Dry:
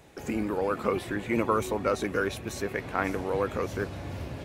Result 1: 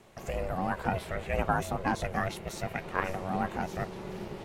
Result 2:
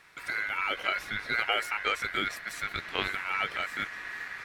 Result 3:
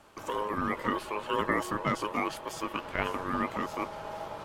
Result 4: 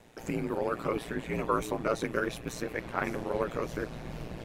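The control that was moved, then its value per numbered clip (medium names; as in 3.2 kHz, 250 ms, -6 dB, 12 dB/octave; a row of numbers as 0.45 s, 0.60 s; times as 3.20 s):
ring modulator, frequency: 280 Hz, 1.8 kHz, 730 Hz, 58 Hz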